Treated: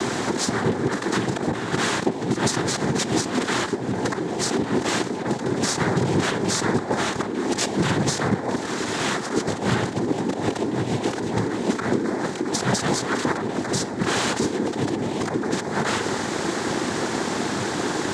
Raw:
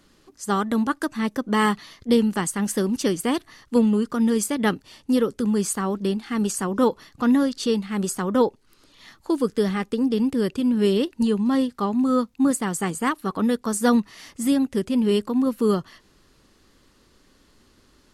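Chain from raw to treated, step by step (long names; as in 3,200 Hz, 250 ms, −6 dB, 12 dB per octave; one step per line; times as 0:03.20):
compressor on every frequency bin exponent 0.4
compressor whose output falls as the input rises −20 dBFS, ratio −0.5
brickwall limiter −11 dBFS, peak gain reduction 11.5 dB
cochlear-implant simulation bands 6
on a send: convolution reverb RT60 0.95 s, pre-delay 6 ms, DRR 15 dB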